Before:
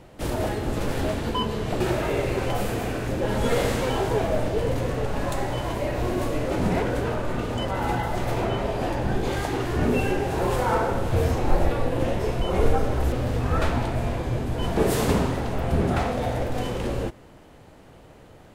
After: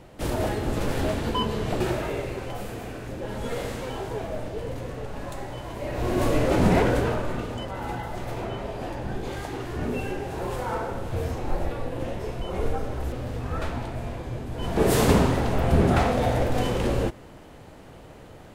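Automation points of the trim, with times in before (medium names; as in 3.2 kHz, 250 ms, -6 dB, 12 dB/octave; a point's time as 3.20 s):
1.71 s 0 dB
2.44 s -8 dB
5.71 s -8 dB
6.28 s +4 dB
6.88 s +4 dB
7.67 s -6.5 dB
14.50 s -6.5 dB
14.96 s +3 dB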